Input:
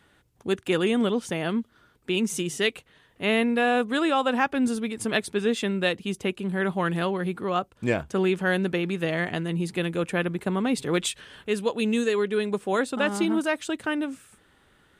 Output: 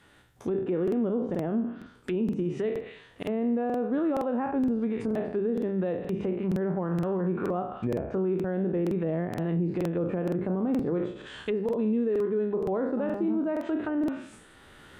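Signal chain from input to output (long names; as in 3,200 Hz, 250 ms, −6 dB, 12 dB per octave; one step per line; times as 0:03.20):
peak hold with a decay on every bin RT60 0.54 s
camcorder AGC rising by 8.2 dB per second
treble cut that deepens with the level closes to 600 Hz, closed at −21.5 dBFS
mains-hum notches 50/100/150/200 Hz
brickwall limiter −20.5 dBFS, peak gain reduction 7 dB
regular buffer underruns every 0.47 s, samples 2,048, repeat, from 0:00.83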